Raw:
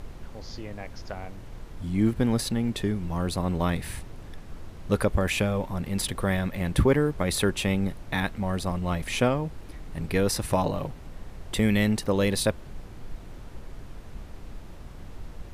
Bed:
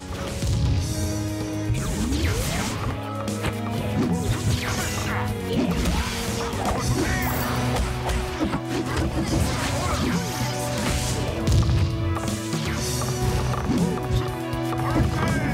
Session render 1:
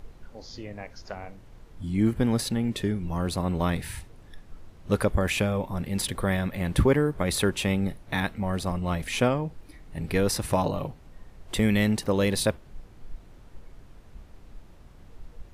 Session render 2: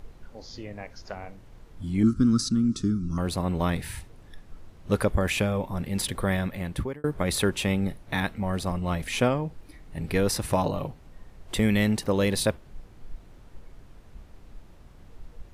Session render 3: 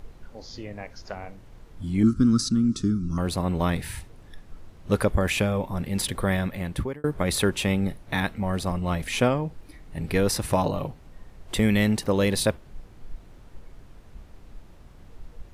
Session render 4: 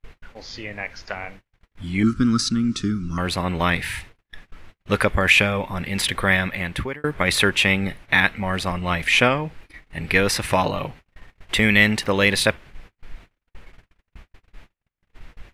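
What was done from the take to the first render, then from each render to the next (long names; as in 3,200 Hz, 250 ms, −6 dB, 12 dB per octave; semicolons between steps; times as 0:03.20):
noise reduction from a noise print 8 dB
0:02.03–0:03.18: drawn EQ curve 130 Hz 0 dB, 280 Hz +6 dB, 540 Hz −20 dB, 850 Hz −26 dB, 1,300 Hz +8 dB, 1,800 Hz −17 dB, 3,000 Hz −12 dB, 5,600 Hz +8 dB, 9,800 Hz −4 dB, 14,000 Hz −24 dB; 0:06.42–0:07.04: fade out linear
level +1.5 dB
parametric band 2,200 Hz +14.5 dB 1.9 octaves; noise gate −40 dBFS, range −44 dB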